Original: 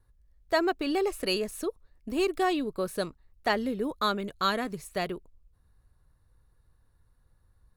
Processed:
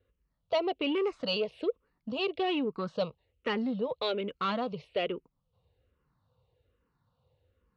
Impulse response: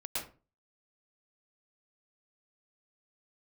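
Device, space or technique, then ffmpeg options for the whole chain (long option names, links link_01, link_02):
barber-pole phaser into a guitar amplifier: -filter_complex "[0:a]asplit=2[link_01][link_02];[link_02]afreqshift=-1.2[link_03];[link_01][link_03]amix=inputs=2:normalize=1,asoftclip=type=tanh:threshold=-27dB,highpass=110,equalizer=frequency=340:width_type=q:width=4:gain=-4,equalizer=frequency=500:width_type=q:width=4:gain=9,equalizer=frequency=1700:width_type=q:width=4:gain=-9,equalizer=frequency=2900:width_type=q:width=4:gain=8,lowpass=frequency=4100:width=0.5412,lowpass=frequency=4100:width=1.3066,volume=3dB"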